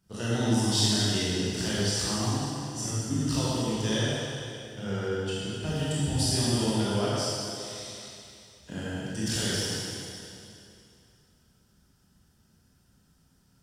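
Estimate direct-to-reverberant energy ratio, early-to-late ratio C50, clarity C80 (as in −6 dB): −9.0 dB, −5.0 dB, −3.0 dB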